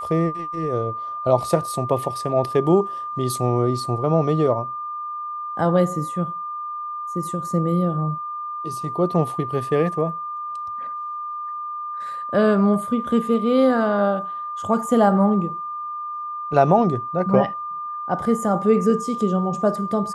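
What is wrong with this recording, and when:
whistle 1,200 Hz −27 dBFS

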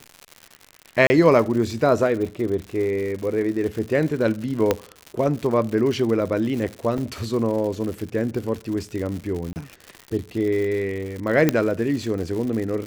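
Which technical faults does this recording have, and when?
surface crackle 140 per second −29 dBFS
0:01.07–0:01.10: drop-out 30 ms
0:04.71: click −5 dBFS
0:06.98: drop-out 2.2 ms
0:09.53–0:09.56: drop-out 29 ms
0:11.49: click −4 dBFS

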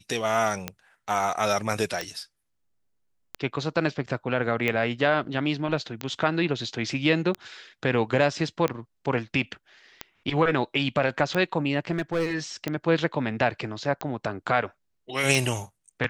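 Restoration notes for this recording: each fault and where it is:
scratch tick 45 rpm −13 dBFS
0:11.91–0:12.35: clipping −21 dBFS

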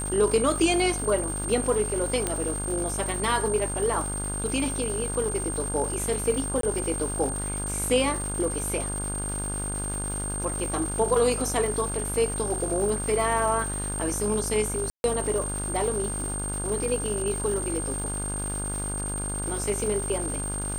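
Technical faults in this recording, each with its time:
mains buzz 50 Hz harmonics 33 −33 dBFS
surface crackle 450 per second −33 dBFS
whistle 8,700 Hz −31 dBFS
0:02.27: click −11 dBFS
0:06.61–0:06.63: drop-out 23 ms
0:14.90–0:15.04: drop-out 141 ms

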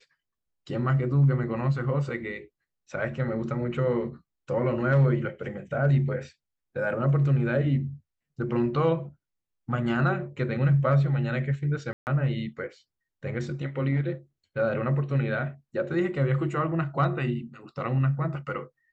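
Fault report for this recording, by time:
0:11.93–0:12.07: drop-out 139 ms

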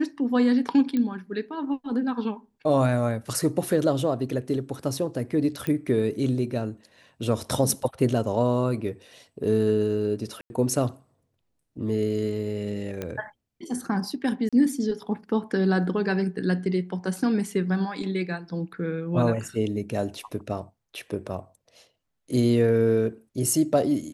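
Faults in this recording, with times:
0:00.97: click −16 dBFS
0:05.67: click −16 dBFS
0:10.41–0:10.50: drop-out 91 ms
0:13.02: click −17 dBFS
0:14.49–0:14.53: drop-out 36 ms

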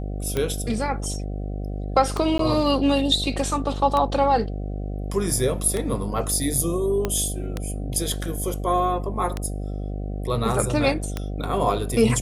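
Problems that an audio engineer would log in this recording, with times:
mains buzz 50 Hz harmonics 15 −29 dBFS
scratch tick 33 1/3 rpm −11 dBFS
0:02.38–0:02.39: drop-out 13 ms
0:07.05: click −10 dBFS

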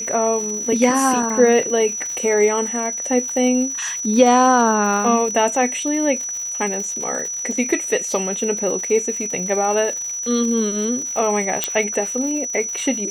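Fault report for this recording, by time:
surface crackle 140 per second −27 dBFS
whistle 5,900 Hz −24 dBFS
0:11.64: click −2 dBFS

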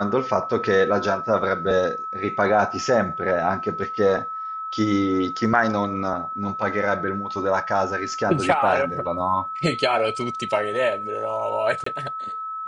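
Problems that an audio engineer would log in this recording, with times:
whistle 1,300 Hz −28 dBFS
0:11.84–0:11.86: drop-out 24 ms

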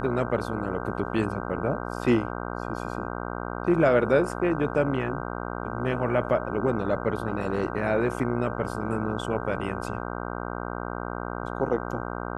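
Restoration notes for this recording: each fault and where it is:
mains buzz 60 Hz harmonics 26 −33 dBFS

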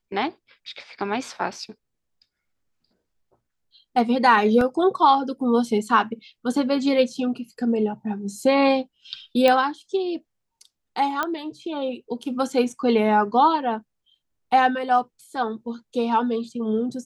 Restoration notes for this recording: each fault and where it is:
0:04.61: drop-out 2.8 ms
0:09.48: click −7 dBFS
0:11.23: click −11 dBFS

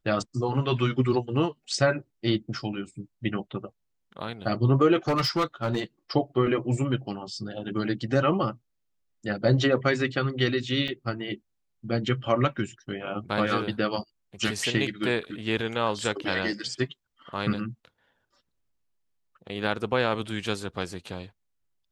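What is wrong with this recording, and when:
0:05.08–0:05.80: clipping −20.5 dBFS
0:10.88: drop-out 3.5 ms

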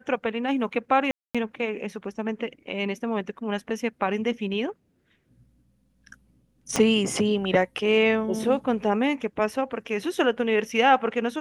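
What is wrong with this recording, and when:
0:01.11–0:01.35: drop-out 236 ms
0:06.76: click −9 dBFS

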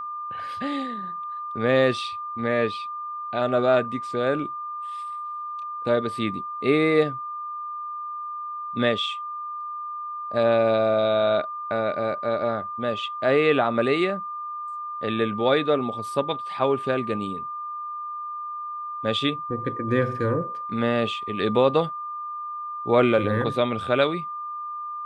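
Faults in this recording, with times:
whistle 1,200 Hz −30 dBFS

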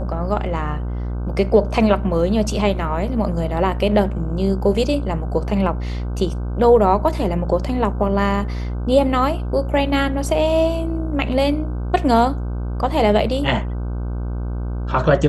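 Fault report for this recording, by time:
mains buzz 60 Hz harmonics 26 −24 dBFS

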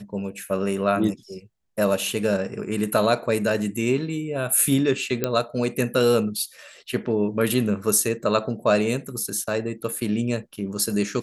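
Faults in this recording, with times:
0:05.24: click −7 dBFS

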